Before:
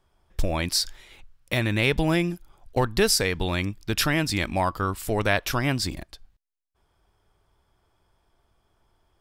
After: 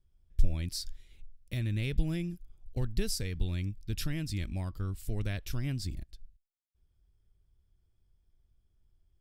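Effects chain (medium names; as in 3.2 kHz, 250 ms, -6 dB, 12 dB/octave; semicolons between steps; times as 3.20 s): amplifier tone stack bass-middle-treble 10-0-1; trim +7 dB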